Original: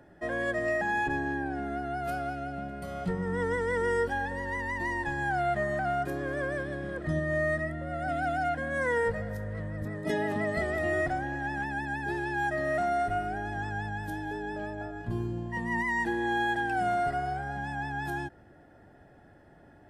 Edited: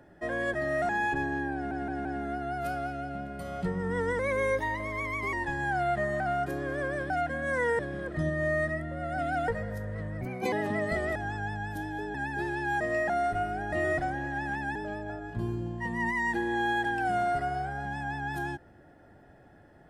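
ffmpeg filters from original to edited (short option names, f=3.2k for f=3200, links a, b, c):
-filter_complex "[0:a]asplit=19[a][b][c][d][e][f][g][h][i][j][k][l][m][n][o][p][q][r][s];[a]atrim=end=0.542[t];[b]atrim=start=12.498:end=12.852[u];[c]atrim=start=0.828:end=1.652[v];[d]atrim=start=1.478:end=1.652[w];[e]atrim=start=1.478:end=1.652[x];[f]atrim=start=1.478:end=3.624[y];[g]atrim=start=3.62:end=4.92,asetpts=PTS-STARTPTS,asetrate=50274,aresample=44100,atrim=end_sample=50289,asetpts=PTS-STARTPTS[z];[h]atrim=start=4.916:end=6.692[aa];[i]atrim=start=8.378:end=9.072[ab];[j]atrim=start=6.688:end=8.382[ac];[k]atrim=start=9.068:end=9.804[ad];[l]atrim=start=9.8:end=10.18,asetpts=PTS-STARTPTS,asetrate=53361,aresample=44100[ae];[m]atrim=start=10.176:end=10.812[af];[n]atrim=start=13.478:end=14.472[ag];[o]atrim=start=11.838:end=12.502[ah];[p]atrim=start=0.538:end=0.832[ai];[q]atrim=start=12.848:end=13.482[aj];[r]atrim=start=10.808:end=11.842[ak];[s]atrim=start=14.468[al];[t][u]acrossfade=d=0.004:c1=hsin:c2=hsin[am];[am][v]acrossfade=d=0.004:c1=hsin:c2=hsin[an];[an][w]acrossfade=d=0.004:c1=hsin:c2=hsin[ao];[ao][x]acrossfade=d=0.004:c1=hsin:c2=hsin[ap];[ap][y]acrossfade=d=0.004:c1=hsin:c2=hsin[aq];[aq][z]acrossfade=d=0.004:c1=hsin:c2=hsin[ar];[ar][aa]acrossfade=d=0.004:c1=hsin:c2=hsin[as];[as][ab]acrossfade=d=0.004:c1=hsin:c2=hsin[at];[at][ac]acrossfade=d=0.004:c1=hsin:c2=hsin[au];[au][ad]acrossfade=d=0.004:c1=hsin:c2=hsin[av];[av][ae]acrossfade=d=0.004:c1=hsin:c2=hsin[aw];[aw][af]acrossfade=d=0.004:c1=hsin:c2=hsin[ax];[ax][ag]acrossfade=d=0.004:c1=hsin:c2=hsin[ay];[ay][ah]acrossfade=d=0.004:c1=hsin:c2=hsin[az];[az][ai]acrossfade=d=0.004:c1=hsin:c2=hsin[ba];[ba][aj]acrossfade=d=0.004:c1=hsin:c2=hsin[bb];[bb][ak]acrossfade=d=0.004:c1=hsin:c2=hsin[bc];[bc][al]acrossfade=d=0.004:c1=hsin:c2=hsin"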